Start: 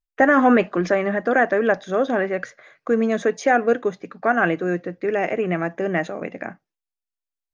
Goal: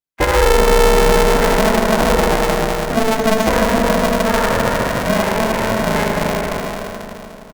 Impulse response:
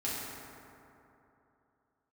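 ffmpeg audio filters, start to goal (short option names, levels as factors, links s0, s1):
-filter_complex "[0:a]asplit=2[s0][s1];[s1]adelay=302,lowpass=f=1600:p=1,volume=0.631,asplit=2[s2][s3];[s3]adelay=302,lowpass=f=1600:p=1,volume=0.34,asplit=2[s4][s5];[s5]adelay=302,lowpass=f=1600:p=1,volume=0.34,asplit=2[s6][s7];[s7]adelay=302,lowpass=f=1600:p=1,volume=0.34[s8];[s0][s2][s4][s6][s8]amix=inputs=5:normalize=0[s9];[1:a]atrim=start_sample=2205[s10];[s9][s10]afir=irnorm=-1:irlink=0,acrossover=split=430[s11][s12];[s12]acompressor=threshold=0.158:ratio=6[s13];[s11][s13]amix=inputs=2:normalize=0,highpass=120,alimiter=level_in=1.5:limit=0.891:release=50:level=0:latency=1,aeval=exprs='val(0)*sgn(sin(2*PI*220*n/s))':c=same,volume=0.631"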